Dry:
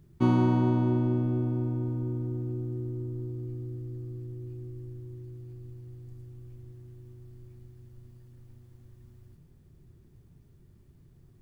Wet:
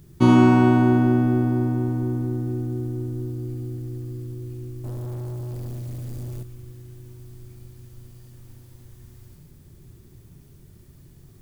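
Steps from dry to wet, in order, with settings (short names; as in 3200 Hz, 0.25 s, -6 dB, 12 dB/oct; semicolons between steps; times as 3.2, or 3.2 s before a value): high shelf 3800 Hz +10 dB; thinning echo 70 ms, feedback 69%, high-pass 160 Hz, level -6 dB; 4.84–6.43 sample leveller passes 3; gain +7.5 dB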